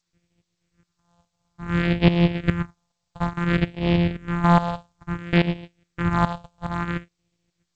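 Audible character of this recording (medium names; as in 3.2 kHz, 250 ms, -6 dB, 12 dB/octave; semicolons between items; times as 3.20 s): a buzz of ramps at a fixed pitch in blocks of 256 samples; phasing stages 4, 0.58 Hz, lowest notch 330–1200 Hz; tremolo saw up 2.4 Hz, depth 80%; G.722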